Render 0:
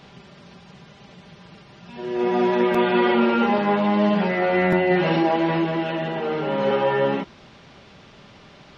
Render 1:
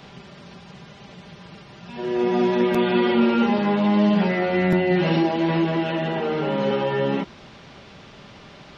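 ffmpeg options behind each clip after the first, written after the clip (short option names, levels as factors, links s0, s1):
-filter_complex "[0:a]acrossover=split=340|3000[s0][s1][s2];[s1]acompressor=threshold=0.0447:ratio=6[s3];[s0][s3][s2]amix=inputs=3:normalize=0,volume=1.41"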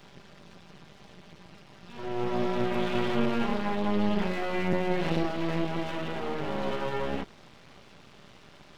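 -af "aeval=exprs='max(val(0),0)':c=same,volume=0.596"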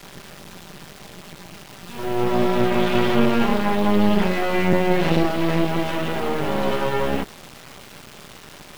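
-af "acrusher=bits=7:mix=0:aa=0.000001,volume=2.82"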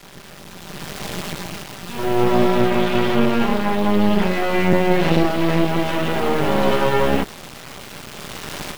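-af "dynaudnorm=f=580:g=3:m=6.31,volume=0.841"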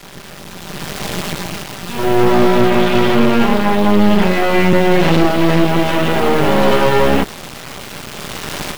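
-af "volume=2.66,asoftclip=hard,volume=0.376,volume=2"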